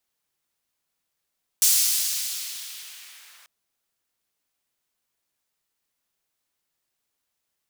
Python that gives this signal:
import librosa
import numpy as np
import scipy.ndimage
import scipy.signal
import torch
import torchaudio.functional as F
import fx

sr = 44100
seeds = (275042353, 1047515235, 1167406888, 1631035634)

y = fx.riser_noise(sr, seeds[0], length_s=1.84, colour='pink', kind='highpass', start_hz=6300.0, end_hz=1400.0, q=1.0, swell_db=-39, law='linear')